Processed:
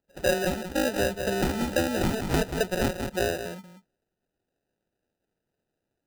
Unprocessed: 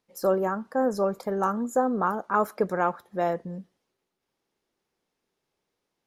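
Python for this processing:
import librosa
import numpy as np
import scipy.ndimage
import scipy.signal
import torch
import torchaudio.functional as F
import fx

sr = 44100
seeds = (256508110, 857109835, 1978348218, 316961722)

y = fx.spec_quant(x, sr, step_db=15)
y = fx.low_shelf(y, sr, hz=180.0, db=-10.0)
y = fx.sample_hold(y, sr, seeds[0], rate_hz=1100.0, jitter_pct=0)
y = y + 10.0 ** (-9.0 / 20.0) * np.pad(y, (int(183 * sr / 1000.0), 0))[:len(y)]
y = fx.band_squash(y, sr, depth_pct=70, at=(0.96, 3.38))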